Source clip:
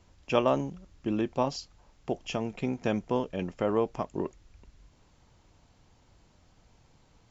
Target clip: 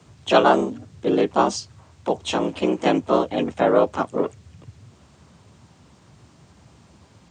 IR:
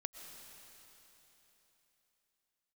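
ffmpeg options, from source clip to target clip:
-filter_complex "[0:a]afreqshift=57,asplit=3[a][b][c];[b]asetrate=52444,aresample=44100,atempo=0.840896,volume=-2dB[d];[c]asetrate=55563,aresample=44100,atempo=0.793701,volume=-7dB[e];[a][d][e]amix=inputs=3:normalize=0,volume=7dB"

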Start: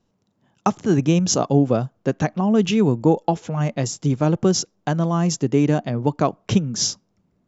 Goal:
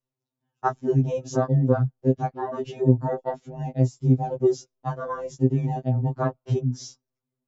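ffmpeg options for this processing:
-af "afwtdn=0.1,afftfilt=real='re*2.45*eq(mod(b,6),0)':imag='im*2.45*eq(mod(b,6),0)':win_size=2048:overlap=0.75"

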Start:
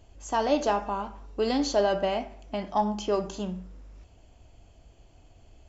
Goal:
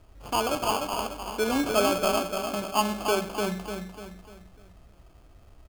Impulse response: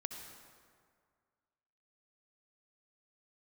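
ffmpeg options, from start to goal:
-filter_complex "[0:a]asettb=1/sr,asplit=3[a][b][c];[a]atrim=end=0.484[d];[b]atrim=start=0.48:end=0.98,asetpts=PTS-STARTPTS,afade=t=in:d=0.004:c=qsin,afade=t=out:st=0.496:d=0.004:c=qsin,tiltshelf=f=1.3k:g=-9[e];[c]atrim=start=0.976[f];[d][e]acrossfade=d=0.004:c1=hsin:c2=qsin[g];[g][f]acrossfade=d=0.004:c1=qsin:c2=hsin,aecho=1:1:297|594|891|1188|1485:0.562|0.242|0.104|0.0447|0.0192,acrusher=samples=23:mix=1:aa=0.000001"

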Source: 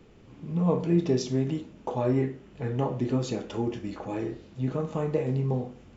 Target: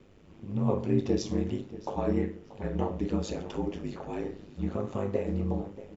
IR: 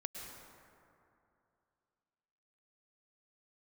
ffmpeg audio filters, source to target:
-filter_complex "[0:a]asplit=2[a][b];[b]adelay=633,lowpass=f=4.5k:p=1,volume=-15.5dB,asplit=2[c][d];[d]adelay=633,lowpass=f=4.5k:p=1,volume=0.36,asplit=2[e][f];[f]adelay=633,lowpass=f=4.5k:p=1,volume=0.36[g];[a][c][e][g]amix=inputs=4:normalize=0,aeval=exprs='val(0)*sin(2*PI*50*n/s)':c=same"

